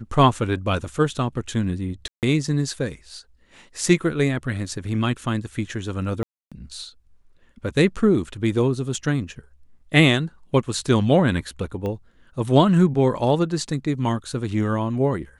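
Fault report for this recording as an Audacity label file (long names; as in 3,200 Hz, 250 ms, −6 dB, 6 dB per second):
2.080000	2.230000	drop-out 148 ms
6.230000	6.520000	drop-out 286 ms
11.860000	11.860000	click −18 dBFS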